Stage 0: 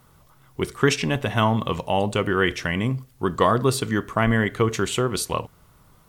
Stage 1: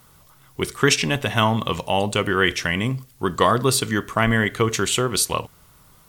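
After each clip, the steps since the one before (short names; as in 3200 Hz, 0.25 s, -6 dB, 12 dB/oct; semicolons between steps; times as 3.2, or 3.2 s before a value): high shelf 2000 Hz +8 dB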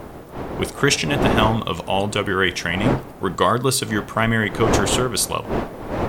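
wind noise 610 Hz -26 dBFS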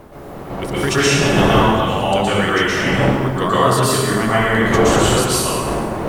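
plate-style reverb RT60 1.7 s, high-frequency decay 0.7×, pre-delay 0.105 s, DRR -9.5 dB; gain -5.5 dB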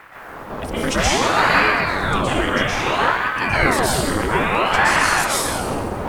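ring modulator with a swept carrier 760 Hz, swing 85%, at 0.6 Hz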